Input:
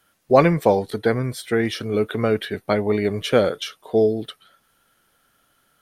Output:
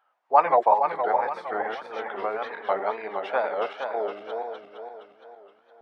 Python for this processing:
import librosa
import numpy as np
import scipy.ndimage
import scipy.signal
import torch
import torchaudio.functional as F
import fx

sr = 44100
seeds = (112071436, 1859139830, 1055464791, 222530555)

y = fx.reverse_delay_fb(x, sr, ms=233, feedback_pct=64, wet_db=-3.0)
y = fx.ladder_bandpass(y, sr, hz=950.0, resonance_pct=60)
y = fx.wow_flutter(y, sr, seeds[0], rate_hz=2.1, depth_cents=140.0)
y = y * librosa.db_to_amplitude(7.5)